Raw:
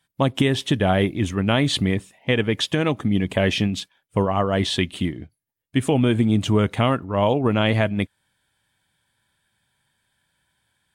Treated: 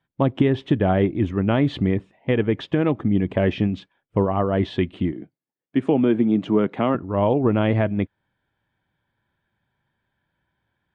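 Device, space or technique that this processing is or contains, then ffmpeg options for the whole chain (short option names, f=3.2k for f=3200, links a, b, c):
phone in a pocket: -filter_complex "[0:a]asettb=1/sr,asplit=3[a][b][c];[a]atrim=end=5.124[d];[b]atrim=start=5.12:end=6.95,asetpts=PTS-STARTPTS,afade=t=in:d=0.004:c=qsin,afade=t=out:st=1.826:d=0.004:c=qsin,highpass=f=160:w=0.5412,highpass=f=160:w=1.3066[e];[c]atrim=start=6.946[f];[d][e]acrossfade=d=0.004:c1=hsin:c2=qsin[g];[g][f]acrossfade=d=0.004:c1=qsin:c2=hsin,lowpass=3k,equalizer=f=340:t=o:w=0.6:g=4,highshelf=f=2k:g=-10.5"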